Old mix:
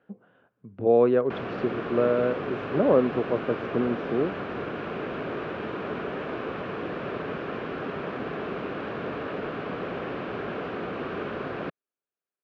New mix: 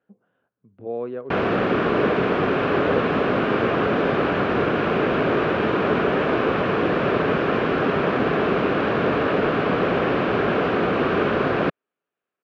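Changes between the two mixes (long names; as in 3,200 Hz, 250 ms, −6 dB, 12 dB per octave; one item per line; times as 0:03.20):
speech −9.5 dB
background +12.0 dB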